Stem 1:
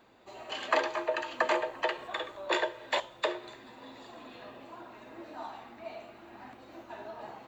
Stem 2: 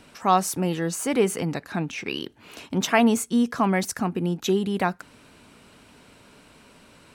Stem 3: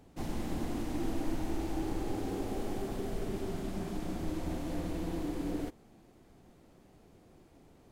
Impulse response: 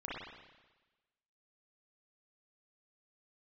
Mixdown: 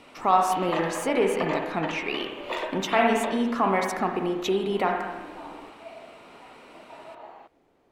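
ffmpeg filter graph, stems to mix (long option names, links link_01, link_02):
-filter_complex "[0:a]volume=-3.5dB,asplit=2[link_01][link_02];[link_02]volume=-4dB[link_03];[1:a]volume=1.5dB,asplit=2[link_04][link_05];[link_05]volume=-4.5dB[link_06];[2:a]acompressor=threshold=-36dB:ratio=6,volume=-0.5dB[link_07];[link_01][link_04]amix=inputs=2:normalize=0,asuperstop=centerf=1600:order=4:qfactor=5.2,alimiter=limit=-16dB:level=0:latency=1:release=297,volume=0dB[link_08];[3:a]atrim=start_sample=2205[link_09];[link_03][link_06]amix=inputs=2:normalize=0[link_10];[link_10][link_09]afir=irnorm=-1:irlink=0[link_11];[link_07][link_08][link_11]amix=inputs=3:normalize=0,bass=frequency=250:gain=-14,treble=frequency=4000:gain=-11"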